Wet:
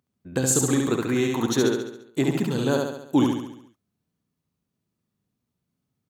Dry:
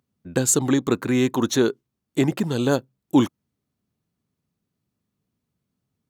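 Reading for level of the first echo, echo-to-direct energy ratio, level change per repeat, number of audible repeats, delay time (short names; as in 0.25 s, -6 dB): -3.0 dB, -1.5 dB, -5.5 dB, 6, 69 ms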